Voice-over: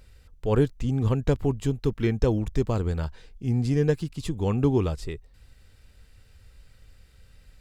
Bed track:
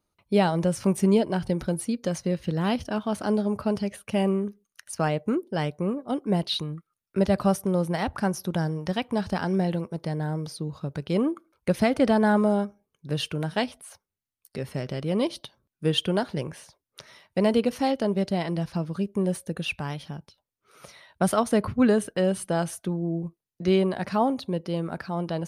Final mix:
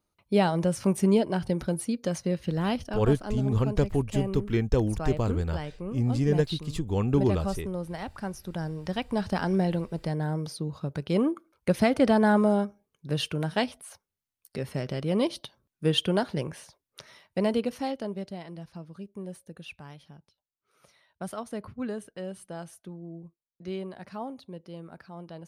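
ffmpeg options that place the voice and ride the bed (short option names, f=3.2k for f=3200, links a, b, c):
-filter_complex "[0:a]adelay=2500,volume=-1.5dB[a];[1:a]volume=7dB,afade=t=out:st=2.58:d=0.61:silence=0.421697,afade=t=in:st=8.42:d=0.95:silence=0.375837,afade=t=out:st=16.79:d=1.62:silence=0.223872[b];[a][b]amix=inputs=2:normalize=0"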